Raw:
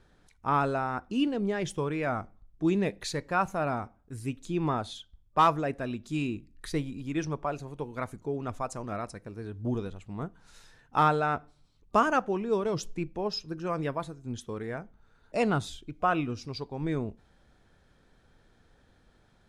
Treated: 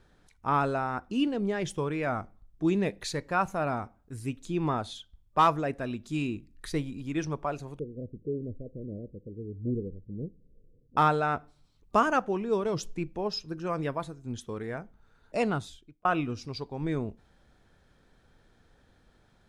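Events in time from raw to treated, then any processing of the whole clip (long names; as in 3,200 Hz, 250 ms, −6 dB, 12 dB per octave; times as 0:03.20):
0:07.79–0:10.97: Butterworth low-pass 530 Hz 72 dB per octave
0:15.35–0:16.05: fade out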